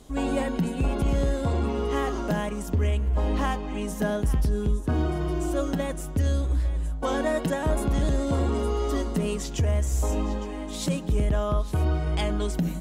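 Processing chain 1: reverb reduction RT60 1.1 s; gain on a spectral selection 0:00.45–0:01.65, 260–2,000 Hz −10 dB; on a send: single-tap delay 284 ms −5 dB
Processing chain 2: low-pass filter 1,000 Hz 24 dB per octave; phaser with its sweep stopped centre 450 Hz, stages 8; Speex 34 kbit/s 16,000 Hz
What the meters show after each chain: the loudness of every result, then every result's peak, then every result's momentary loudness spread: −28.0, −32.5 LKFS; −14.0, −16.0 dBFS; 4, 6 LU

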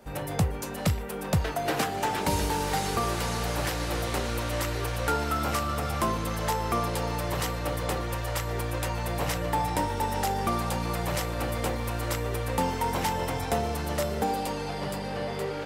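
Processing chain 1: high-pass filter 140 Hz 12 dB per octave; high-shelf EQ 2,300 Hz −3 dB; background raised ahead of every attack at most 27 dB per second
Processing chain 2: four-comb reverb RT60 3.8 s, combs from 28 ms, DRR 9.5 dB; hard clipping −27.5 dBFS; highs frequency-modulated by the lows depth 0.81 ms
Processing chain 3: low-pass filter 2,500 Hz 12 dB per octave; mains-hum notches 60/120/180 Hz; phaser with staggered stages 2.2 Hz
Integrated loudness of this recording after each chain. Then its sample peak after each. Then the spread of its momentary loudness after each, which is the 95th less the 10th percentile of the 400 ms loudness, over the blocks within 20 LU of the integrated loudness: −29.0, −31.5, −33.5 LKFS; −13.5, −27.5, −16.5 dBFS; 5, 3, 5 LU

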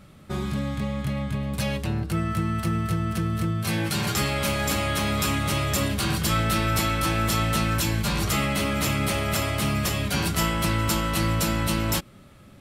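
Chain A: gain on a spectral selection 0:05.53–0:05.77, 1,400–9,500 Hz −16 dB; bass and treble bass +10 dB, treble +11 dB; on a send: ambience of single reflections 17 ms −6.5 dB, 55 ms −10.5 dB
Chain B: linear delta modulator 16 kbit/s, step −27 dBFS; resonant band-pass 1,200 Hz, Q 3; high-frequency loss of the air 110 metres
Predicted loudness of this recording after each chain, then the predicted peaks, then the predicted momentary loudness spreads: −16.0, −35.0 LKFS; −1.0, −22.0 dBFS; 8, 11 LU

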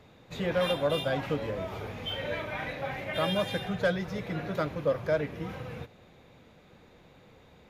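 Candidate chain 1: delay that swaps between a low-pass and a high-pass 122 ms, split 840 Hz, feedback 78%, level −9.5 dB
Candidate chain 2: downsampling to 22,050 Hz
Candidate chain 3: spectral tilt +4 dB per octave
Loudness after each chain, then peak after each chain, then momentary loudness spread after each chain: −31.0, −31.5, −31.0 LKFS; −15.5, −16.5, −14.0 dBFS; 12, 10, 14 LU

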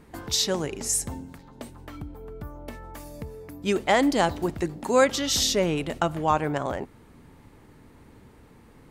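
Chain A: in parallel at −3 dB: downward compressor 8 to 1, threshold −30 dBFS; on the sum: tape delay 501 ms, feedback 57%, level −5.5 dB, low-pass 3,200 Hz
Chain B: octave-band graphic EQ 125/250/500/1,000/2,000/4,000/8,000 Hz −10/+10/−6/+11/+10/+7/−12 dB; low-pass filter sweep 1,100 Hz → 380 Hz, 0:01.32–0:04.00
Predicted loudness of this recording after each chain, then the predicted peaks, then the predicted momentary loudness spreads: −23.0, −21.0 LKFS; −6.5, −4.5 dBFS; 16, 20 LU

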